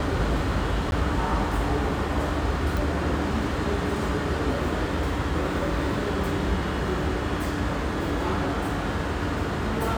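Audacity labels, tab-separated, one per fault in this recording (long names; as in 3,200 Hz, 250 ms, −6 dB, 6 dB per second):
0.910000	0.920000	drop-out 11 ms
2.770000	2.770000	click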